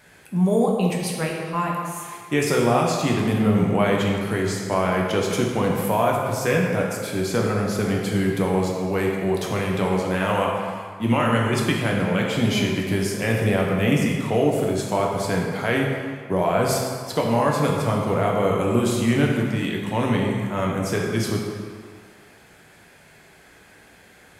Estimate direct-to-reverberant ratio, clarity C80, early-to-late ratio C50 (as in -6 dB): -2.0 dB, 2.5 dB, 1.5 dB